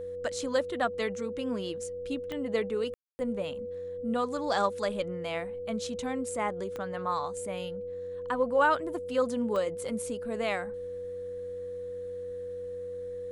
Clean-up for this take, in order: de-click; de-hum 91 Hz, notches 6; band-stop 490 Hz, Q 30; room tone fill 2.94–3.19 s

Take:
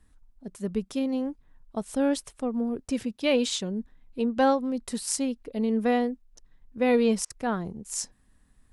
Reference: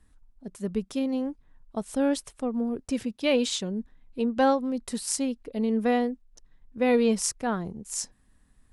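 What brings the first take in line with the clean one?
interpolate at 7.25 s, 51 ms

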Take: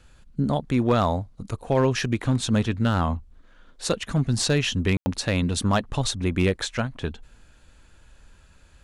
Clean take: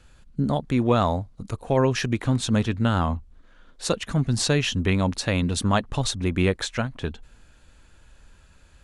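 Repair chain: clip repair -13 dBFS; room tone fill 4.97–5.06 s

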